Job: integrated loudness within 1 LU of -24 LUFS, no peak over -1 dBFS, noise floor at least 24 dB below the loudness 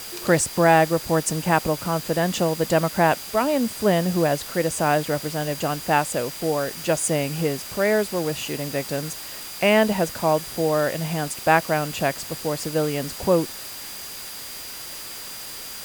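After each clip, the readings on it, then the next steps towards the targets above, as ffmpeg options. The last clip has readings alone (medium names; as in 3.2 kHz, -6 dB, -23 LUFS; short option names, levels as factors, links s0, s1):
steady tone 4.8 kHz; tone level -41 dBFS; noise floor -36 dBFS; noise floor target -47 dBFS; loudness -23.0 LUFS; peak level -4.0 dBFS; loudness target -24.0 LUFS
-> -af "bandreject=f=4800:w=30"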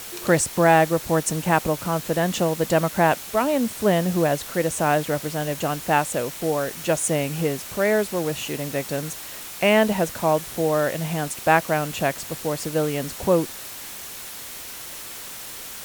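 steady tone not found; noise floor -37 dBFS; noise floor target -47 dBFS
-> -af "afftdn=nr=10:nf=-37"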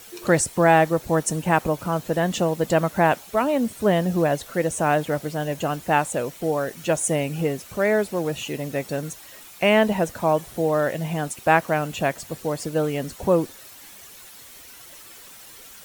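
noise floor -45 dBFS; noise floor target -47 dBFS
-> -af "afftdn=nr=6:nf=-45"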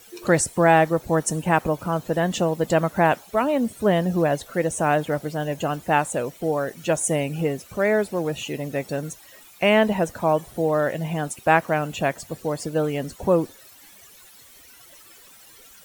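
noise floor -49 dBFS; loudness -23.0 LUFS; peak level -4.0 dBFS; loudness target -24.0 LUFS
-> -af "volume=0.891"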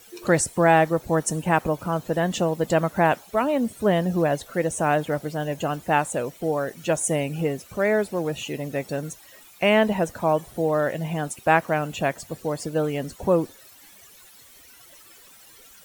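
loudness -24.0 LUFS; peak level -5.0 dBFS; noise floor -50 dBFS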